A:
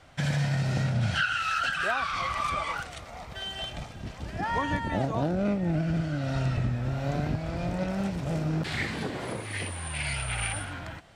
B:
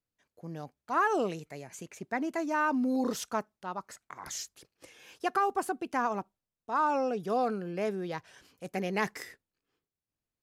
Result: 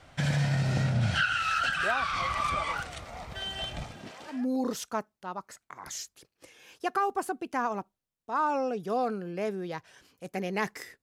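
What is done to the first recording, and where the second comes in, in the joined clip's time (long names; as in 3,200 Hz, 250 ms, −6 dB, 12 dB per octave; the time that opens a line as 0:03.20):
A
0:03.94–0:04.46: high-pass filter 170 Hz → 1,000 Hz
0:04.36: continue with B from 0:02.76, crossfade 0.20 s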